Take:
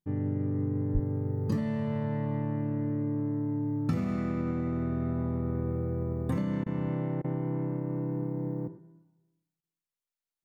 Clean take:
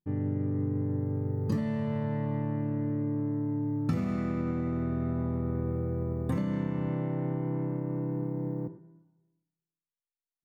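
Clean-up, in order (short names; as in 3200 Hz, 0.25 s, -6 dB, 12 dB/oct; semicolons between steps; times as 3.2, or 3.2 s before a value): 0.93–1.05 HPF 140 Hz 24 dB/oct; interpolate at 6.64/7.22/9.61, 22 ms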